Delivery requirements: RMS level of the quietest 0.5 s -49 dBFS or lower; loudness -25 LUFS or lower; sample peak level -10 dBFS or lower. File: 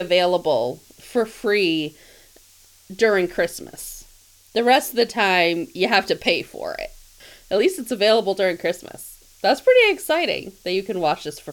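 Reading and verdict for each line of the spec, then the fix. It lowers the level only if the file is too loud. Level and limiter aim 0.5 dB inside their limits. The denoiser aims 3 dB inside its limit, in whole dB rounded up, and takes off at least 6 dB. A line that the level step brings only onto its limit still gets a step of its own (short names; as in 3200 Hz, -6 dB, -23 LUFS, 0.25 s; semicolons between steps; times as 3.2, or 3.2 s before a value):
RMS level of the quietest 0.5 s -52 dBFS: OK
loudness -20.0 LUFS: fail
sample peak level -4.0 dBFS: fail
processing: gain -5.5 dB; limiter -10.5 dBFS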